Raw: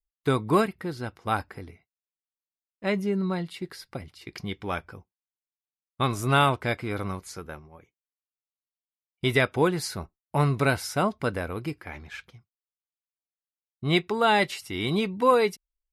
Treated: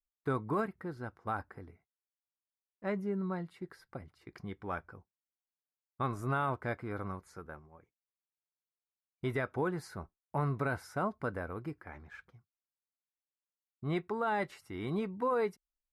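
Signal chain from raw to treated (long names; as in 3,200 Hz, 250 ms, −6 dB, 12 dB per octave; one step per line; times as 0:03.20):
high shelf with overshoot 2,100 Hz −10 dB, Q 1.5
brickwall limiter −15 dBFS, peak gain reduction 7.5 dB
level −8.5 dB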